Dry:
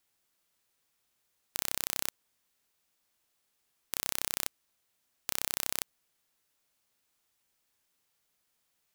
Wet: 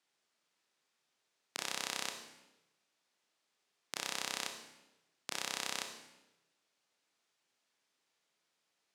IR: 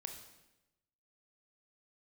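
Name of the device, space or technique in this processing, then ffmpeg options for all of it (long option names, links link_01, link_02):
supermarket ceiling speaker: -filter_complex "[0:a]highpass=210,lowpass=6200[link_01];[1:a]atrim=start_sample=2205[link_02];[link_01][link_02]afir=irnorm=-1:irlink=0,volume=3.5dB"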